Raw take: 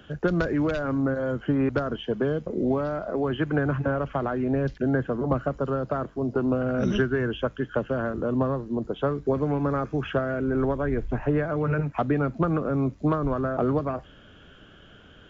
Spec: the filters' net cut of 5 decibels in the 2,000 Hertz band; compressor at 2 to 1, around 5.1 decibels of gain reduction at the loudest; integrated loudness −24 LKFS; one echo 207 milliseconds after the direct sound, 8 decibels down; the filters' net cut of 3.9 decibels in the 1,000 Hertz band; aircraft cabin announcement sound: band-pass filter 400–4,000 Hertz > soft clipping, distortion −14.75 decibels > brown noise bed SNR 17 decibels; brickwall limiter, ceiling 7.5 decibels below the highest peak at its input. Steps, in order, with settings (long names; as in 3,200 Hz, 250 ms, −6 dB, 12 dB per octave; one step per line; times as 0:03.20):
parametric band 1,000 Hz −3.5 dB
parametric band 2,000 Hz −5.5 dB
downward compressor 2 to 1, threshold −29 dBFS
brickwall limiter −24 dBFS
band-pass filter 400–4,000 Hz
single-tap delay 207 ms −8 dB
soft clipping −32 dBFS
brown noise bed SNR 17 dB
level +15.5 dB